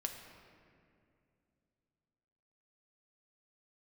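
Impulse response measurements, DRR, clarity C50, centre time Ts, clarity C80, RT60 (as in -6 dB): 3.0 dB, 6.0 dB, 46 ms, 7.0 dB, 2.5 s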